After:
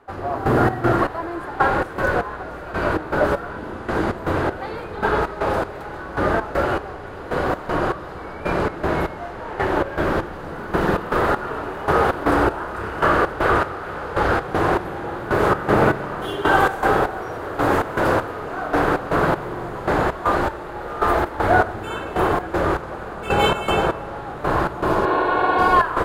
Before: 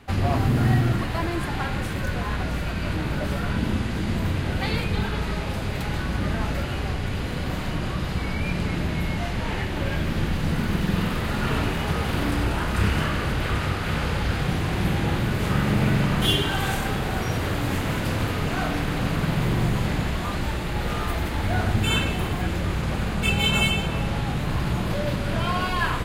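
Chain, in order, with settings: trance gate "......xxx..xxx." 197 bpm -12 dB; spectral replace 24.90–25.68 s, 260–4400 Hz both; high-order bell 720 Hz +15.5 dB 2.7 oct; trim -1.5 dB

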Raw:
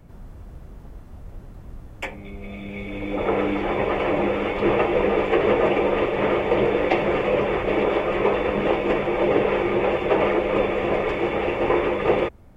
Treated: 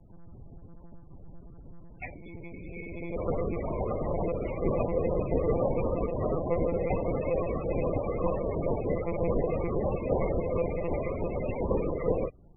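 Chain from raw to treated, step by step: hum 50 Hz, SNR 30 dB; monotone LPC vocoder at 8 kHz 170 Hz; loudest bins only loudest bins 32; trim -7 dB

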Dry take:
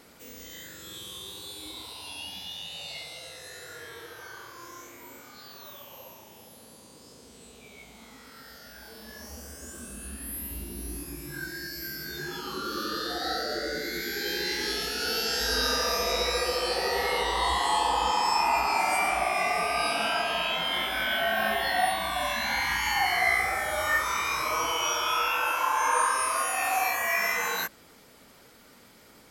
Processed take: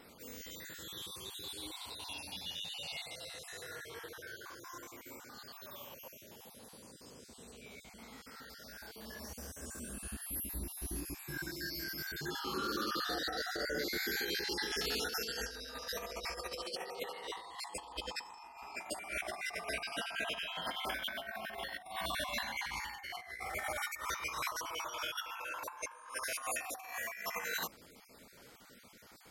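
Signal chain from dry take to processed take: random holes in the spectrogram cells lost 29%; compressor with a negative ratio -33 dBFS, ratio -0.5; 16.64–17.76 s: high-pass 160 Hz 12 dB/octave; trim -6.5 dB

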